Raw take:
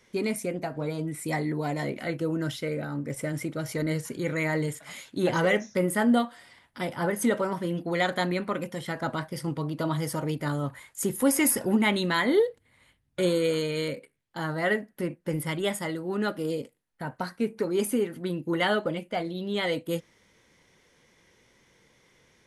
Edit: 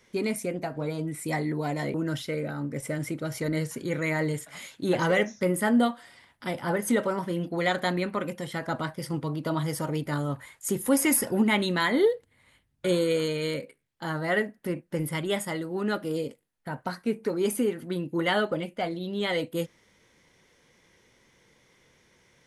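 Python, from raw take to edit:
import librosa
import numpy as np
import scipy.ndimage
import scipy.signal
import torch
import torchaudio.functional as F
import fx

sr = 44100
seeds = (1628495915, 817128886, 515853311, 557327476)

y = fx.edit(x, sr, fx.cut(start_s=1.94, length_s=0.34), tone=tone)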